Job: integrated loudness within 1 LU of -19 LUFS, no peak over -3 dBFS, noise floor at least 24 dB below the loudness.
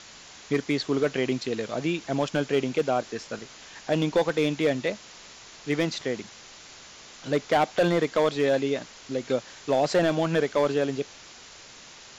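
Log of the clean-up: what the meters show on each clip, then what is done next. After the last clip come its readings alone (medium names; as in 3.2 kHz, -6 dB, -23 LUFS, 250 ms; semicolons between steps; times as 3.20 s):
clipped samples 0.9%; clipping level -15.5 dBFS; noise floor -48 dBFS; noise floor target -51 dBFS; loudness -26.5 LUFS; peak level -15.5 dBFS; loudness target -19.0 LUFS
-> clip repair -15.5 dBFS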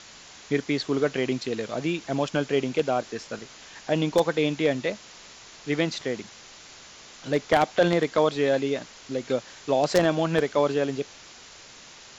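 clipped samples 0.0%; noise floor -48 dBFS; noise floor target -50 dBFS
-> noise reduction 6 dB, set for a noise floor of -48 dBFS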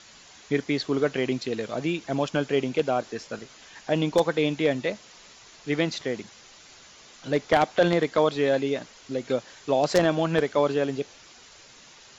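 noise floor -51 dBFS; loudness -26.0 LUFS; peak level -6.5 dBFS; loudness target -19.0 LUFS
-> trim +7 dB; peak limiter -3 dBFS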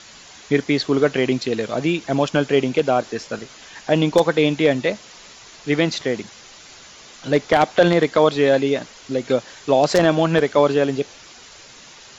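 loudness -19.0 LUFS; peak level -3.0 dBFS; noise floor -44 dBFS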